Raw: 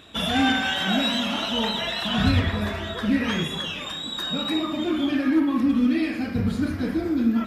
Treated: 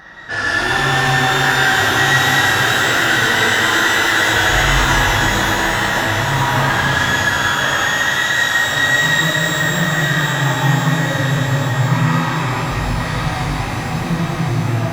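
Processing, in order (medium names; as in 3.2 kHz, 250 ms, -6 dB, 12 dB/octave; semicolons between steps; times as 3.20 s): tilt shelf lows -6 dB; saturation -22.5 dBFS, distortion -12 dB; thinning echo 525 ms, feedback 60%, high-pass 420 Hz, level -6.5 dB; speed mistake 15 ips tape played at 7.5 ips; pitch-shifted reverb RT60 3.6 s, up +12 st, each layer -8 dB, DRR -5 dB; trim +5 dB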